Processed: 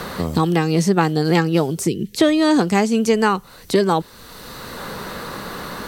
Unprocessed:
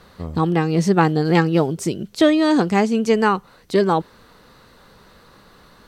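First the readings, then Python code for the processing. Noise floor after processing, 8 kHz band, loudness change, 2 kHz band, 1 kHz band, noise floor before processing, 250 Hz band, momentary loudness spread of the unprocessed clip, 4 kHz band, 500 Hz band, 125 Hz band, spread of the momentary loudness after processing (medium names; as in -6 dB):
-44 dBFS, +6.0 dB, +0.5 dB, +1.0 dB, 0.0 dB, -51 dBFS, +0.5 dB, 7 LU, +3.5 dB, 0.0 dB, +0.5 dB, 16 LU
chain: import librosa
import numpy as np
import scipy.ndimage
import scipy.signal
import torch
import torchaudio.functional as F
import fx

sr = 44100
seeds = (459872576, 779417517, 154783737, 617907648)

y = fx.spec_box(x, sr, start_s=1.87, length_s=0.29, low_hz=510.0, high_hz=1700.0, gain_db=-19)
y = fx.high_shelf(y, sr, hz=5900.0, db=11.5)
y = fx.band_squash(y, sr, depth_pct=70)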